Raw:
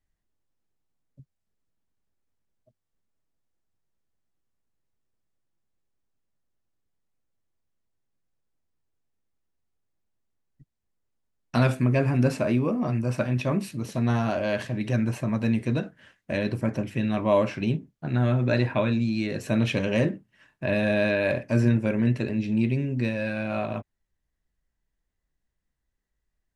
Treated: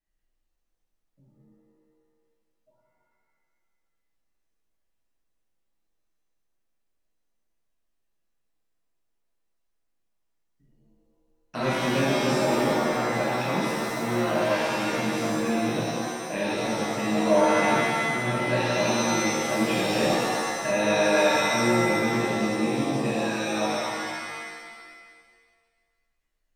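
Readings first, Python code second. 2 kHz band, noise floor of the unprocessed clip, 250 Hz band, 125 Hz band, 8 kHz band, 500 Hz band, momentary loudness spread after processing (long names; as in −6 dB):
+5.5 dB, −81 dBFS, −1.0 dB, −8.0 dB, +15.0 dB, +3.0 dB, 8 LU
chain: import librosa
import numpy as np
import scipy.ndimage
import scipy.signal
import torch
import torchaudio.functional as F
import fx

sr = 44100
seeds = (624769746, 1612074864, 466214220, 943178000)

y = fx.peak_eq(x, sr, hz=80.0, db=-14.0, octaves=1.6)
y = fx.rev_shimmer(y, sr, seeds[0], rt60_s=1.7, semitones=7, shimmer_db=-2, drr_db=-7.5)
y = F.gain(torch.from_numpy(y), -7.5).numpy()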